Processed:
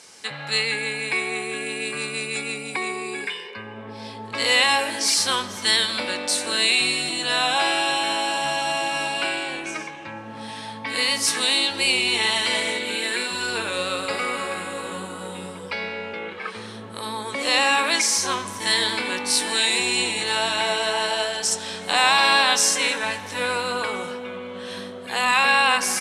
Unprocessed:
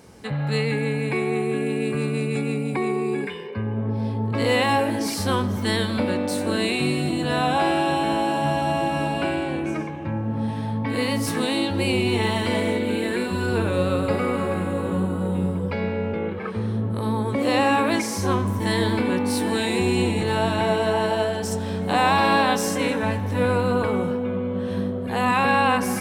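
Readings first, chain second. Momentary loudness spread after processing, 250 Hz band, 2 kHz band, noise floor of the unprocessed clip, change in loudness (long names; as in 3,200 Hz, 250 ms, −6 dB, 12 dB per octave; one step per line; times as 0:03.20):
16 LU, −11.5 dB, +5.5 dB, −28 dBFS, +2.0 dB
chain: downsampling to 32,000 Hz
meter weighting curve ITU-R 468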